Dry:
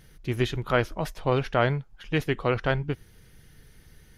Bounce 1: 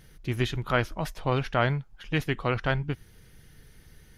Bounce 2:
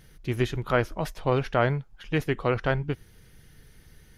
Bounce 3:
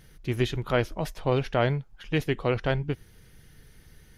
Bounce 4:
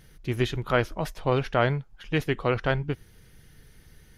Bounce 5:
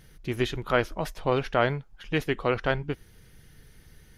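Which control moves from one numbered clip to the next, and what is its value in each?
dynamic EQ, frequency: 450, 3500, 1300, 9400, 120 Hz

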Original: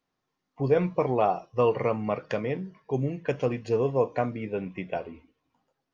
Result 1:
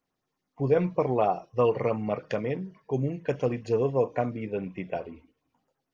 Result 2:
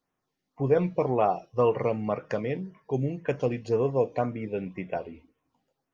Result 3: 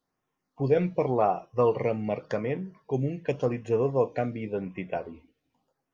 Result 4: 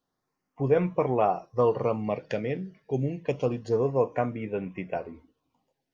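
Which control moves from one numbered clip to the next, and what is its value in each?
LFO notch, rate: 9.4, 1.9, 0.88, 0.28 Hz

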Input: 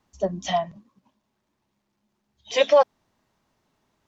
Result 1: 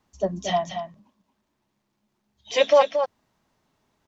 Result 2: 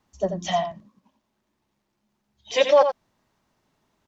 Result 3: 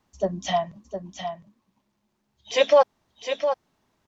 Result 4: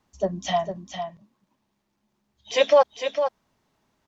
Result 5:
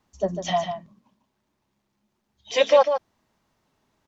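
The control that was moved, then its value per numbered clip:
echo, time: 227, 86, 709, 454, 148 ms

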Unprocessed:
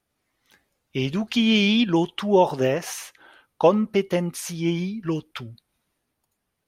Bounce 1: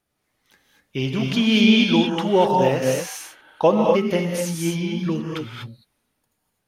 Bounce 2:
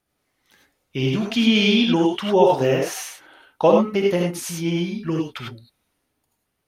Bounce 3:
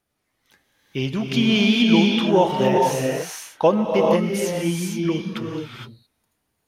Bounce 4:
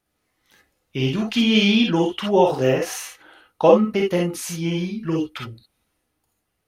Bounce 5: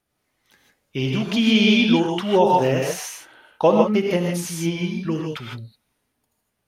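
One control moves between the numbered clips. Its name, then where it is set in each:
non-linear reverb, gate: 270, 120, 490, 80, 180 ms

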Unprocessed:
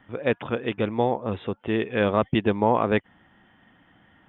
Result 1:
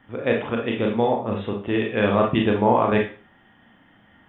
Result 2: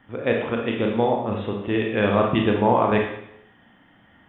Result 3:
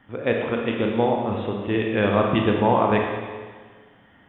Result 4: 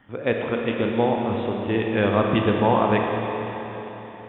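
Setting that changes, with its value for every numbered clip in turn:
Schroeder reverb, RT60: 0.36, 0.75, 1.6, 4.1 s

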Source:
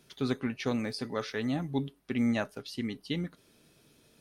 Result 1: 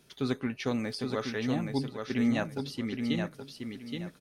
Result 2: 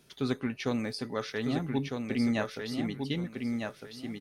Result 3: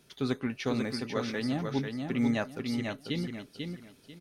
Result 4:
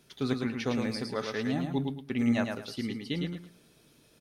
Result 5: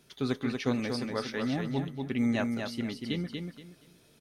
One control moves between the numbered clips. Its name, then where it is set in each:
feedback echo, time: 0.823, 1.254, 0.493, 0.11, 0.237 s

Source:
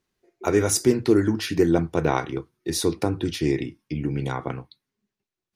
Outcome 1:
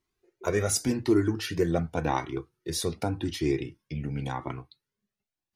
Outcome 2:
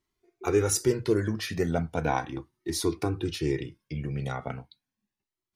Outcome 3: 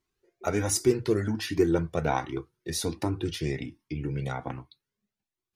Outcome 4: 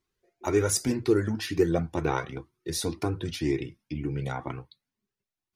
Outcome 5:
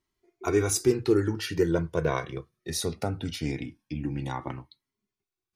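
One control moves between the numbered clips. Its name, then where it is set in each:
cascading flanger, rate: 0.89, 0.37, 1.3, 2, 0.21 Hz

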